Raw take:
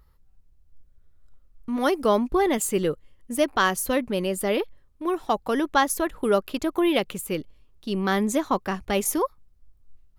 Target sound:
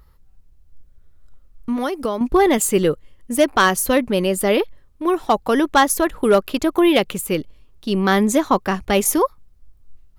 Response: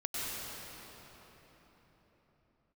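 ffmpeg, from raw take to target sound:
-filter_complex "[0:a]asettb=1/sr,asplit=3[s0][s1][s2];[s0]atrim=end=1.724[s3];[s1]atrim=start=1.72:end=2.21,asetpts=PTS-STARTPTS,afade=t=in:d=0.004:c=qsin,afade=t=out:st=0.486:d=0.004:c=qsin,acompressor=threshold=0.0501:ratio=12[s4];[s2]atrim=start=2.206[s5];[s3][s4]acrossfade=d=0.004:c1=hsin:c2=qsin[s6];[s6][s5]acrossfade=d=0.004:c1=qsin:c2=hsin,asoftclip=type=hard:threshold=0.211,volume=2.24"

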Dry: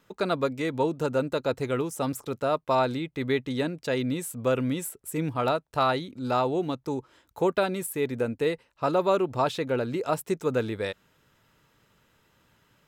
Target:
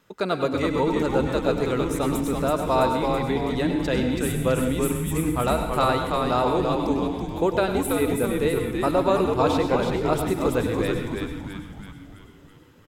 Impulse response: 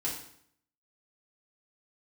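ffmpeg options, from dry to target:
-filter_complex "[0:a]asettb=1/sr,asplit=3[s0][s1][s2];[s0]atrim=end=3.044[s3];[s1]atrim=start=3.04:end=3.56,asetpts=PTS-STARTPTS,afade=t=in:d=0.004:c=qsin,afade=t=out:st=0.516:d=0.004:c=qsin,acrossover=split=400[s4][s5];[s5]acompressor=threshold=0.02:ratio=6[s6];[s4][s6]amix=inputs=2:normalize=0[s7];[s2]atrim=start=3.556[s8];[s3][s7]acrossfade=d=0.004:c1=hsin:c2=qsin[s9];[s9][s8]acrossfade=d=0.004:c1=qsin:c2=hsin,asplit=8[s10][s11][s12][s13][s14][s15][s16][s17];[s11]adelay=329,afreqshift=-100,volume=0.631[s18];[s12]adelay=658,afreqshift=-200,volume=0.347[s19];[s13]adelay=987,afreqshift=-300,volume=0.191[s20];[s14]adelay=1316,afreqshift=-400,volume=0.105[s21];[s15]adelay=1645,afreqshift=-500,volume=0.0575[s22];[s16]adelay=1974,afreqshift=-600,volume=0.0316[s23];[s17]adelay=2303,afreqshift=-700,volume=0.0174[s24];[s10][s18][s19][s20][s21][s22][s23][s24]amix=inputs=8:normalize=0,asplit=2[s25][s26];[1:a]atrim=start_sample=2205,adelay=97[s27];[s26][s27]afir=irnorm=-1:irlink=0,volume=0.316[s28];[s25][s28]amix=inputs=2:normalize=0,volume=1.19"

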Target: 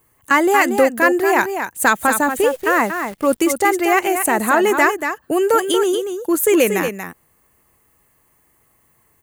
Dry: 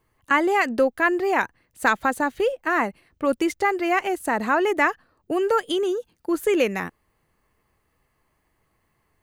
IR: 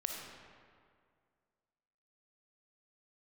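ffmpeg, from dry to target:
-filter_complex "[0:a]acontrast=51,highpass=f=57:p=1,asplit=2[s0][s1];[s1]aecho=0:1:234:0.422[s2];[s0][s2]amix=inputs=2:normalize=0,aexciter=amount=5.1:drive=1.3:freq=6600,asettb=1/sr,asplit=3[s3][s4][s5];[s3]atrim=end=2.414[s6];[s4]atrim=start=2.41:end=3.49,asetpts=PTS-STARTPTS,afade=t=in:d=0.004:c=qsin,afade=t=out:st=1.076:d=0.004:c=qsin,acrusher=bits=7:dc=4:mix=0:aa=0.000001[s7];[s5]atrim=start=3.486[s8];[s6][s7]acrossfade=d=0.004:c1=hsin:c2=qsin[s9];[s9][s8]acrossfade=d=0.004:c1=qsin:c2=hsin"

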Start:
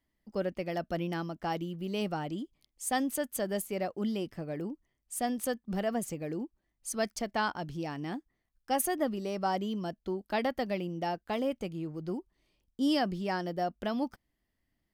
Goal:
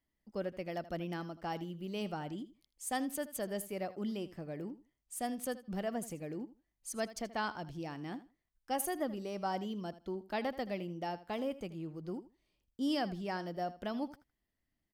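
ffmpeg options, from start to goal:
-af "aecho=1:1:80|160:0.158|0.0285,volume=0.531"

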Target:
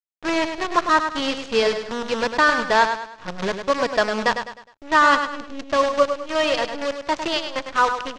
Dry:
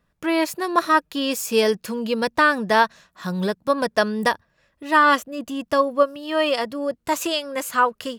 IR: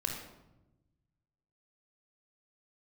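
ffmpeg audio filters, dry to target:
-af "equalizer=f=77:w=0.6:g=-11.5,adynamicsmooth=sensitivity=7.5:basefreq=560,acrusher=bits=5:dc=4:mix=0:aa=0.000001,lowpass=f=6400:w=0.5412,lowpass=f=6400:w=1.3066,aecho=1:1:103|206|309|412:0.398|0.151|0.0575|0.0218"

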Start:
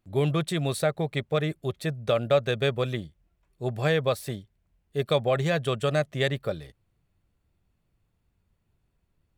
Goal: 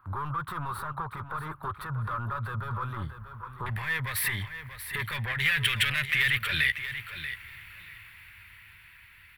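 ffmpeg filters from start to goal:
-filter_complex "[0:a]acrossover=split=330|3000[s0][s1][s2];[s1]acompressor=threshold=0.0282:ratio=6[s3];[s0][s3][s2]amix=inputs=3:normalize=0,asplit=2[s4][s5];[s5]highpass=f=720:p=1,volume=28.2,asoftclip=type=tanh:threshold=0.299[s6];[s4][s6]amix=inputs=2:normalize=0,lowpass=f=4000:p=1,volume=0.501,dynaudnorm=f=430:g=9:m=2.82,firequalizer=gain_entry='entry(100,0);entry(170,-15);entry(270,-19);entry(460,-21);entry(670,-22);entry(970,1);entry(1800,-2);entry(2500,-13);entry(6600,-28);entry(11000,-7)':delay=0.05:min_phase=1,alimiter=level_in=2.51:limit=0.0631:level=0:latency=1:release=109,volume=0.398,asetnsamples=n=441:p=0,asendcmd='3.66 highshelf g 6.5;5.4 highshelf g 13.5',highshelf=f=1600:t=q:w=3:g=-6,aecho=1:1:636|1272:0.282|0.0451,volume=1.78"

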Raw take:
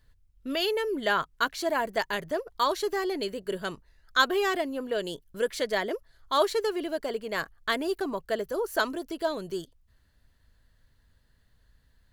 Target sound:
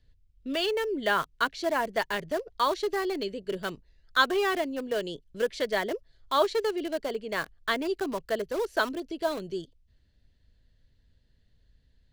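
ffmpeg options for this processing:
-filter_complex "[0:a]lowpass=4900,acrossover=split=330|710|1900[s0][s1][s2][s3];[s2]acrusher=bits=6:mix=0:aa=0.000001[s4];[s0][s1][s4][s3]amix=inputs=4:normalize=0"

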